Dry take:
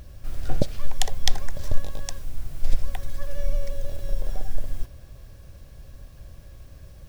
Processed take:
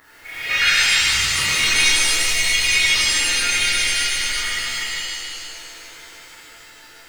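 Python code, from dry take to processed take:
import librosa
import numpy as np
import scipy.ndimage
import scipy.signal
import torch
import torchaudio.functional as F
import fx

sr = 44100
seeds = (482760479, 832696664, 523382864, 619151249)

p1 = fx.band_invert(x, sr, width_hz=2000)
p2 = fx.echo_pitch(p1, sr, ms=107, semitones=2, count=3, db_per_echo=-3.0)
p3 = fx.spec_gate(p2, sr, threshold_db=-15, keep='weak')
p4 = fx.over_compress(p3, sr, threshold_db=-32.0, ratio=-1.0, at=(0.81, 1.38), fade=0.02)
p5 = p4 + fx.echo_bbd(p4, sr, ms=153, stages=4096, feedback_pct=59, wet_db=-5, dry=0)
p6 = fx.rev_shimmer(p5, sr, seeds[0], rt60_s=1.5, semitones=7, shimmer_db=-2, drr_db=-11.0)
y = p6 * 10.0 ** (-4.0 / 20.0)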